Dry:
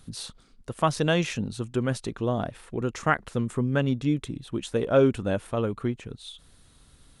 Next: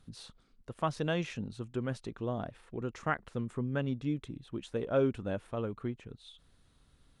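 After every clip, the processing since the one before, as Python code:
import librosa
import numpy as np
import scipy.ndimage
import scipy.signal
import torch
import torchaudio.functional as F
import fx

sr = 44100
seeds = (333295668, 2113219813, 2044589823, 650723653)

y = fx.high_shelf(x, sr, hz=6400.0, db=-11.5)
y = F.gain(torch.from_numpy(y), -8.5).numpy()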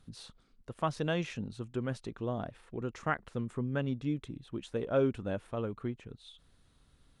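y = x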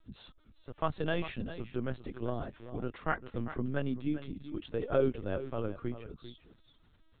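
y = x + 10.0 ** (-12.5 / 20.0) * np.pad(x, (int(396 * sr / 1000.0), 0))[:len(x)]
y = fx.lpc_vocoder(y, sr, seeds[0], excitation='pitch_kept', order=16)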